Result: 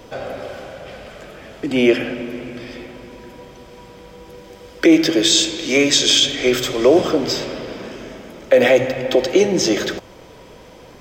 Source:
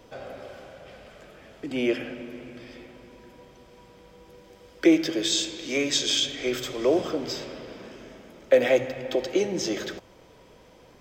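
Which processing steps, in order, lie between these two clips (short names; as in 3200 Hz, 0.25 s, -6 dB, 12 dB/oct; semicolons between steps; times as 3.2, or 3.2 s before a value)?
maximiser +13 dB; gain -2 dB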